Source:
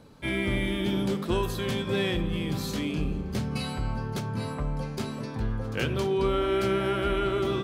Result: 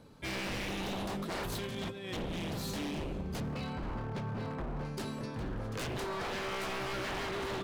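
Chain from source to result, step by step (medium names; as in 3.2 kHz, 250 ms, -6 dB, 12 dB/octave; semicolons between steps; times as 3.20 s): 1.52–2.13 s: compressor with a negative ratio -32 dBFS, ratio -0.5; 3.40–4.85 s: Bessel low-pass 2.4 kHz, order 2; wavefolder -28 dBFS; on a send: reverberation RT60 1.4 s, pre-delay 51 ms, DRR 20 dB; on the sum: trim -4 dB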